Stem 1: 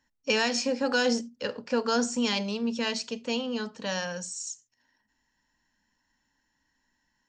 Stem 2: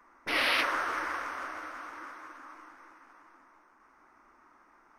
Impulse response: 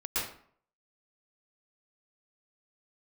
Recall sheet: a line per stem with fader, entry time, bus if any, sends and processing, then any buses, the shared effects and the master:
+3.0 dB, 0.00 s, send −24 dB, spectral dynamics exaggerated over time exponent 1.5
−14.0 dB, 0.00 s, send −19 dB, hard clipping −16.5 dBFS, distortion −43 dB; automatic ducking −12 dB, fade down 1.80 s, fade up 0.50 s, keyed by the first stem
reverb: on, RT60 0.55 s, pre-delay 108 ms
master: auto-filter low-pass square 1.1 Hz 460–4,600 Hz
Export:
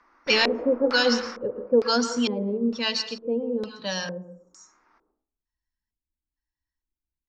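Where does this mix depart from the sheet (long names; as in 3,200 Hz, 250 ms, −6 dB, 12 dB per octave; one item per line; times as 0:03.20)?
stem 2 −14.0 dB → −2.5 dB
reverb return +9.0 dB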